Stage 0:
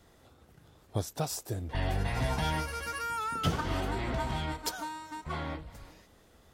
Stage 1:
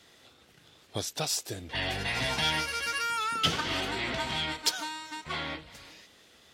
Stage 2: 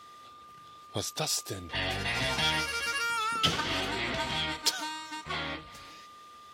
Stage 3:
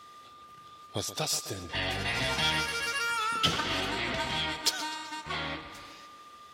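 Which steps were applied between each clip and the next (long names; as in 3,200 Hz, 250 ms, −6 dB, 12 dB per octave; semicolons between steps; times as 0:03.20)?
meter weighting curve D
steady tone 1,200 Hz −49 dBFS
tape delay 128 ms, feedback 66%, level −12 dB, low-pass 5,500 Hz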